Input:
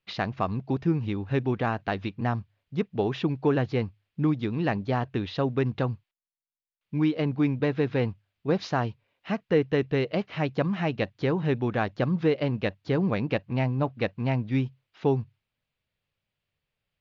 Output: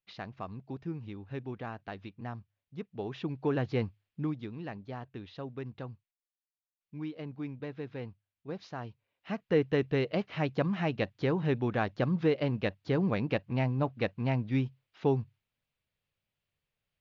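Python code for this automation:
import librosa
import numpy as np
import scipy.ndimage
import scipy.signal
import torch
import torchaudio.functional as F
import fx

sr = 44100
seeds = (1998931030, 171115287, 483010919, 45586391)

y = fx.gain(x, sr, db=fx.line((2.85, -13.0), (3.84, -3.0), (4.67, -14.5), (8.73, -14.5), (9.58, -3.5)))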